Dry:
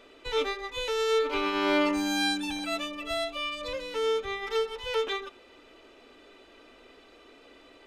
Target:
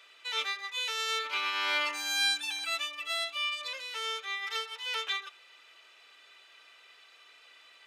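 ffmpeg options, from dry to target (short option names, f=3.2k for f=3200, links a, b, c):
-af "highpass=1.5k,volume=2.5dB"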